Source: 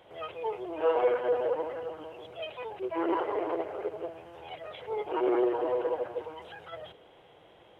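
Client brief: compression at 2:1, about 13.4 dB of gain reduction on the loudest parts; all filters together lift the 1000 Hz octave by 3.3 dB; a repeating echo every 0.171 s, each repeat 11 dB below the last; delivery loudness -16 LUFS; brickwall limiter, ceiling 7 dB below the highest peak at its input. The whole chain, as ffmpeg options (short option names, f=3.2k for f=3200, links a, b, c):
-af "equalizer=f=1k:t=o:g=4,acompressor=threshold=-46dB:ratio=2,alimiter=level_in=10.5dB:limit=-24dB:level=0:latency=1,volume=-10.5dB,aecho=1:1:171|342|513:0.282|0.0789|0.0221,volume=28dB"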